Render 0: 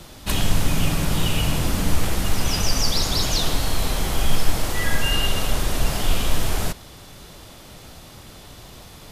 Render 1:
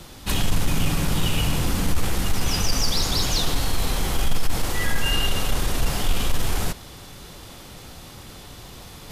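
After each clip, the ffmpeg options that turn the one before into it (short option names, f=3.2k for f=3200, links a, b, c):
-af "bandreject=f=630:w=12,areverse,acompressor=mode=upward:threshold=-36dB:ratio=2.5,areverse,asoftclip=type=tanh:threshold=-10dB"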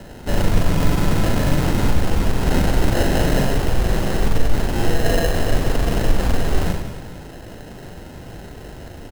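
-filter_complex "[0:a]asplit=2[a][b];[b]asplit=6[c][d][e][f][g][h];[c]adelay=90,afreqshift=40,volume=-18dB[i];[d]adelay=180,afreqshift=80,volume=-22.2dB[j];[e]adelay=270,afreqshift=120,volume=-26.3dB[k];[f]adelay=360,afreqshift=160,volume=-30.5dB[l];[g]adelay=450,afreqshift=200,volume=-34.6dB[m];[h]adelay=540,afreqshift=240,volume=-38.8dB[n];[i][j][k][l][m][n]amix=inputs=6:normalize=0[o];[a][o]amix=inputs=2:normalize=0,acrusher=samples=38:mix=1:aa=0.000001,asplit=2[p][q];[q]aecho=0:1:40|96|174.4|284.2|437.8:0.631|0.398|0.251|0.158|0.1[r];[p][r]amix=inputs=2:normalize=0,volume=3dB"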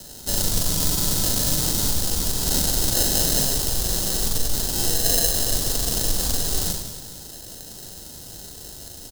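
-af "aexciter=amount=11.7:drive=3.1:freq=3.5k,volume=-9dB"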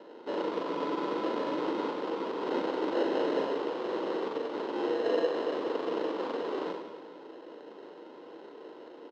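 -af "highpass=f=310:w=0.5412,highpass=f=310:w=1.3066,equalizer=f=320:t=q:w=4:g=6,equalizer=f=470:t=q:w=4:g=7,equalizer=f=710:t=q:w=4:g=-6,equalizer=f=1k:t=q:w=4:g=7,equalizer=f=1.7k:t=q:w=4:g=-7,lowpass=f=2.2k:w=0.5412,lowpass=f=2.2k:w=1.3066"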